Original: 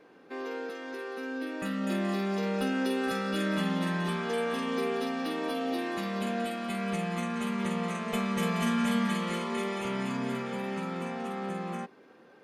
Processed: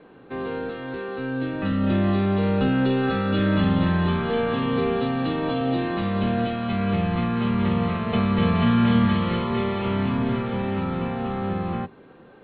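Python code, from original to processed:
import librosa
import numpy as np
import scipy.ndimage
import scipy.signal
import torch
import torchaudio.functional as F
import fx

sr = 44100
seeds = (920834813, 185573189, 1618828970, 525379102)

y = fx.octave_divider(x, sr, octaves=1, level_db=-6.0)
y = scipy.signal.sosfilt(scipy.signal.cheby1(6, 3, 4200.0, 'lowpass', fs=sr, output='sos'), y)
y = fx.low_shelf(y, sr, hz=400.0, db=8.0)
y = y * 10.0 ** (5.5 / 20.0)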